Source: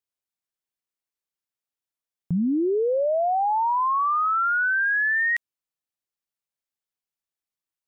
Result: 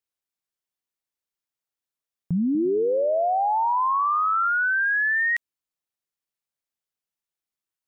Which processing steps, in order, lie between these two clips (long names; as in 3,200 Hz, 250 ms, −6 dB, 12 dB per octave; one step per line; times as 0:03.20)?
0:02.44–0:04.48: echo with shifted repeats 104 ms, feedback 32%, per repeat −39 Hz, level −13 dB